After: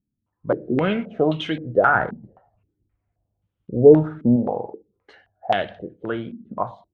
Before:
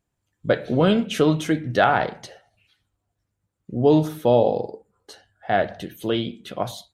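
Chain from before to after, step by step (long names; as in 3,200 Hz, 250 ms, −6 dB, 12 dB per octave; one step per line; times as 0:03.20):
one scale factor per block 7 bits
0:01.95–0:04.36: spectral tilt −2 dB per octave
low-pass on a step sequencer 3.8 Hz 240–3,100 Hz
level −4.5 dB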